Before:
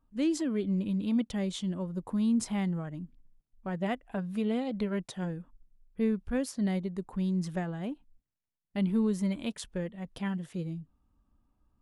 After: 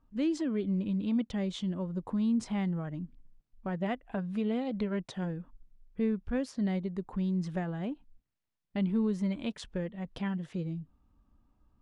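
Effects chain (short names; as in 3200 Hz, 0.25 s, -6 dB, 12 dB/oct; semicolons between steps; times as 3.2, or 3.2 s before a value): in parallel at +2 dB: compressor, threshold -39 dBFS, peak gain reduction 14.5 dB; on the sum: air absorption 91 m; gain -3.5 dB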